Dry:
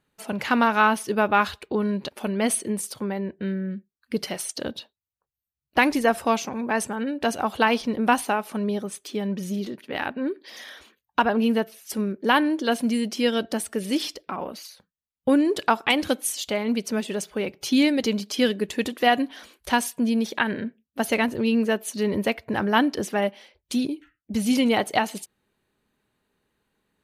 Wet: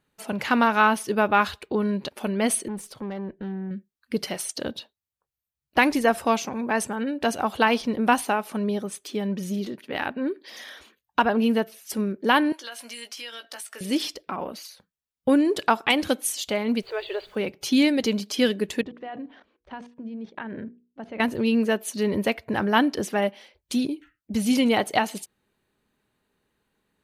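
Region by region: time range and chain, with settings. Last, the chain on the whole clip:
2.68–3.71 s: treble shelf 4.6 kHz -11 dB + valve stage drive 28 dB, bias 0.3
12.52–13.81 s: high-pass 1.1 kHz + compression, threshold -34 dBFS + doubling 17 ms -7.5 dB
16.81–17.35 s: brick-wall FIR band-pass 330–4800 Hz + added noise pink -61 dBFS
18.81–21.20 s: tape spacing loss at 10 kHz 41 dB + level held to a coarse grid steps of 17 dB + hum notches 60/120/180/240/300/360/420/480 Hz
whole clip: none

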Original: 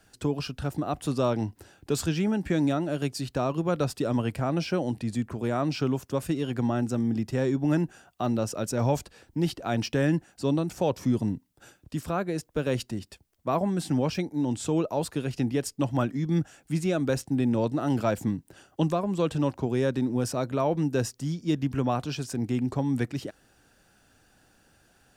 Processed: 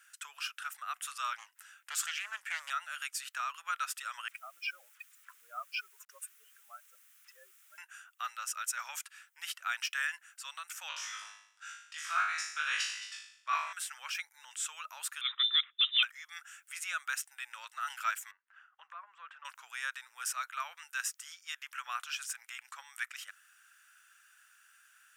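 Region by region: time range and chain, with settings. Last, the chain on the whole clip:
1.38–2.70 s: peaking EQ 600 Hz +8 dB 0.29 oct + loudspeaker Doppler distortion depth 0.28 ms
4.28–7.78 s: spectral contrast enhancement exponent 2.5 + peaking EQ 500 Hz +6 dB 1.4 oct + word length cut 10-bit, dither none
10.88–13.73 s: resonant low-pass 5.5 kHz, resonance Q 1.6 + flutter echo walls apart 3.3 m, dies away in 0.67 s
15.21–16.03 s: high-pass 170 Hz 24 dB/octave + frequency inversion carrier 3.8 kHz
18.31–19.45 s: low-pass 1.4 kHz + compression 2.5:1, threshold -28 dBFS
whole clip: elliptic high-pass 1.3 kHz, stop band 80 dB; peaking EQ 4.4 kHz -12 dB 0.66 oct; trim +4.5 dB

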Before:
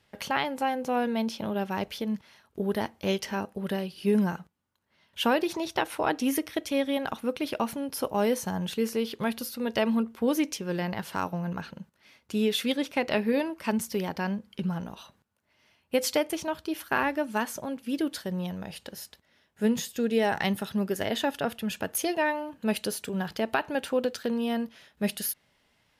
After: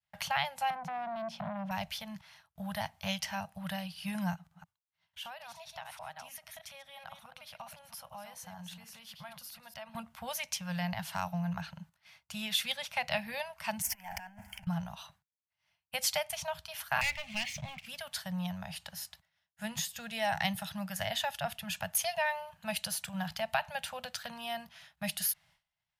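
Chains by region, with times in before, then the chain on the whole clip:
0.70–1.71 s: FFT filter 110 Hz 0 dB, 170 Hz +14 dB, 420 Hz +6 dB, 14 kHz -14 dB + compression, threshold -22 dBFS + transformer saturation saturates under 760 Hz
4.34–9.95 s: chunks repeated in reverse 150 ms, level -8 dB + compression 2:1, threshold -50 dBFS
13.82–14.67 s: power-law waveshaper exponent 0.7 + compressor with a negative ratio -33 dBFS, ratio -0.5 + static phaser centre 790 Hz, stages 8
17.01–17.86 s: FFT filter 130 Hz 0 dB, 310 Hz -6 dB, 1.5 kHz -30 dB, 2.1 kHz +7 dB, 6.6 kHz -14 dB, 10 kHz -28 dB + waveshaping leveller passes 3
whole clip: Chebyshev band-stop 170–680 Hz, order 3; dynamic bell 1.2 kHz, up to -6 dB, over -45 dBFS, Q 1.4; expander -56 dBFS

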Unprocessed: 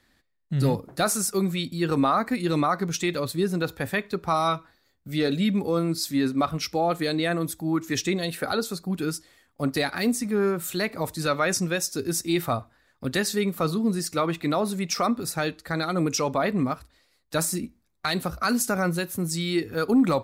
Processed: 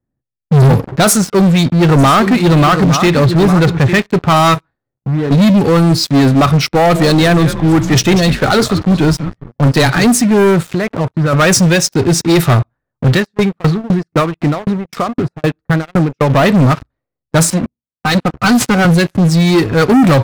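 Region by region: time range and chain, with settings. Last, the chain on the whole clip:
1.13–4.00 s: treble shelf 8.5 kHz -11 dB + delay 856 ms -11.5 dB
4.54–5.31 s: compression 2:1, threshold -42 dBFS + companded quantiser 6-bit
6.66–10.04 s: high-pass 69 Hz 24 dB/octave + frequency-shifting echo 193 ms, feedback 34%, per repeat -140 Hz, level -14 dB
10.72–11.33 s: compression 2:1, threshold -35 dBFS + small samples zeroed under -44.5 dBFS
13.13–16.30 s: upward compressor, threshold -26 dBFS + sawtooth tremolo in dB decaying 3.9 Hz, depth 24 dB
17.50–18.85 s: comb filter that takes the minimum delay 4 ms + high-pass 53 Hz 24 dB/octave + upward expansion, over -46 dBFS
whole clip: level-controlled noise filter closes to 600 Hz, open at -19.5 dBFS; peaking EQ 130 Hz +12.5 dB 0.57 oct; waveshaping leveller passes 5

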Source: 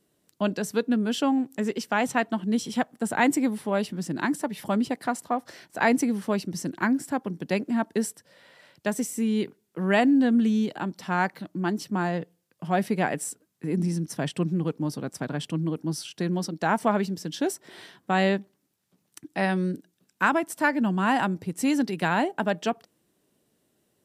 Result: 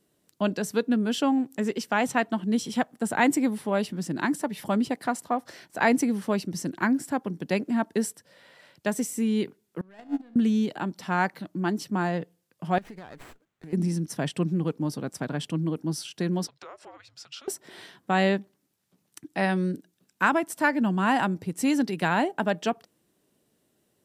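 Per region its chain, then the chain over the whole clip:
9.81–10.36 s: waveshaping leveller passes 2 + feedback comb 72 Hz, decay 0.76 s, mix 70% + gate -20 dBFS, range -27 dB
12.78–13.73 s: peaking EQ 250 Hz -6 dB 2.5 oct + compression 20:1, threshold -38 dBFS + sliding maximum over 9 samples
16.47–17.48 s: compression 16:1, threshold -34 dBFS + frequency shift -300 Hz + band-pass 530–6100 Hz
whole clip: none

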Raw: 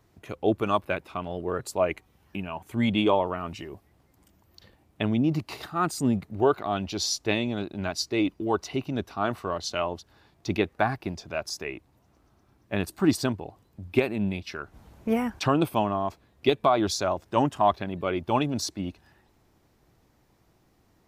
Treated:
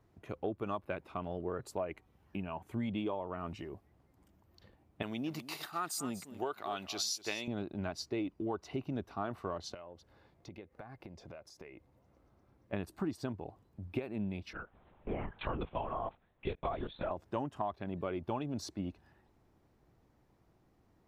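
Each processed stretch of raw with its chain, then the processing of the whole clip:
5.02–7.48 s: tilt EQ +4.5 dB/octave + delay 242 ms -15 dB
9.74–12.73 s: small resonant body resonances 520/2100 Hz, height 9 dB + compression 10:1, threshold -40 dBFS
14.53–17.11 s: bass shelf 330 Hz -10.5 dB + LPC vocoder at 8 kHz whisper
whole clip: treble shelf 2.4 kHz -10 dB; compression 10:1, threshold -28 dBFS; trim -4.5 dB

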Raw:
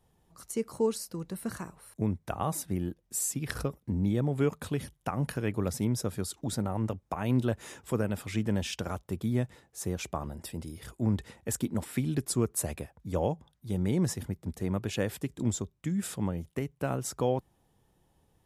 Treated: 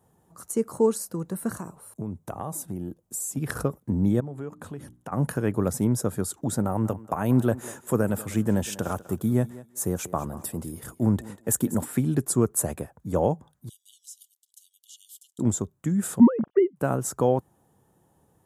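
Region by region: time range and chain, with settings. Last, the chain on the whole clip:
1.53–3.37 s: peaking EQ 1.7 kHz -7.5 dB 0.74 oct + compression 3:1, threshold -36 dBFS
4.20–5.12 s: treble shelf 7.2 kHz -7.5 dB + hum notches 60/120/180/240/300/360 Hz + compression 2.5:1, threshold -44 dBFS
6.63–11.86 s: expander -49 dBFS + treble shelf 12 kHz +11 dB + thinning echo 194 ms, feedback 21%, high-pass 220 Hz, level -16.5 dB
13.69–15.39 s: Chebyshev high-pass 2.9 kHz, order 10 + treble shelf 7 kHz -6 dB + compression 2:1, threshold -49 dBFS
16.20–16.76 s: formants replaced by sine waves + bass shelf 460 Hz +12 dB
whole clip: high-pass 100 Hz; high-order bell 3.3 kHz -9.5 dB; trim +6.5 dB

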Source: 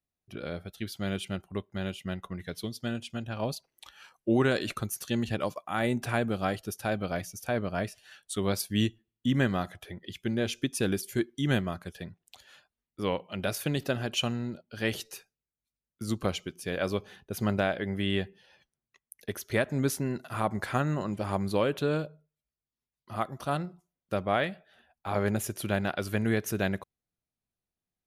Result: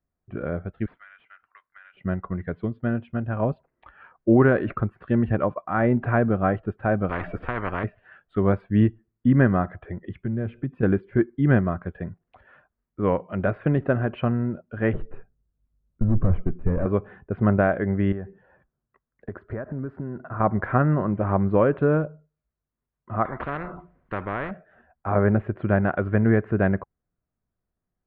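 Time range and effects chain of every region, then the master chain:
0.86–1.97 s: high-pass 1.5 kHz 24 dB/octave + compression 3:1, threshold -47 dBFS + decimation joined by straight lines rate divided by 3×
7.09–7.84 s: tilt EQ -3 dB/octave + spectrum-flattening compressor 10:1
10.25–10.83 s: peaking EQ 140 Hz +11 dB 1.2 oct + compression 2:1, threshold -41 dBFS
14.93–16.86 s: valve stage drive 36 dB, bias 0.35 + tilt EQ -4 dB/octave
18.12–20.40 s: high-order bell 2.8 kHz -8 dB 1.2 oct + compression, threshold -36 dBFS
23.25–24.51 s: tone controls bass -1 dB, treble +3 dB + spectrum-flattening compressor 4:1
whole clip: inverse Chebyshev low-pass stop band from 5.5 kHz, stop band 60 dB; bass shelf 78 Hz +7 dB; band-stop 840 Hz, Q 12; trim +7.5 dB

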